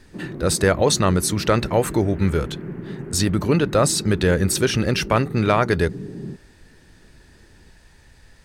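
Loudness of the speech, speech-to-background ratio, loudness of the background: −20.0 LKFS, 13.0 dB, −33.0 LKFS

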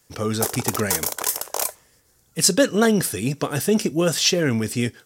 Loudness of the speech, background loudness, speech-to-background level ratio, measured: −21.0 LKFS, −24.5 LKFS, 3.5 dB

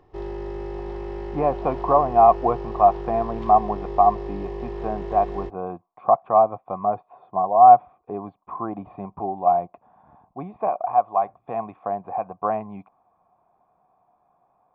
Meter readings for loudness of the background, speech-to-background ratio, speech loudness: −33.0 LKFS, 12.0 dB, −21.0 LKFS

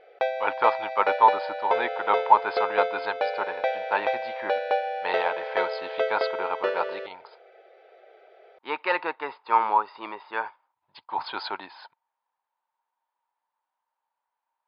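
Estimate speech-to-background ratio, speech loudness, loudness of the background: 2.0 dB, −27.0 LKFS, −29.0 LKFS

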